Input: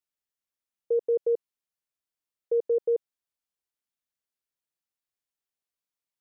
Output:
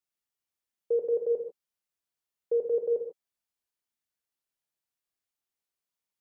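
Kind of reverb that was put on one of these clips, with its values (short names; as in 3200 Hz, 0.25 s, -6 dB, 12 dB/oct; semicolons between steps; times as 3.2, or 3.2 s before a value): non-linear reverb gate 0.17 s flat, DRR 2 dB; gain -1.5 dB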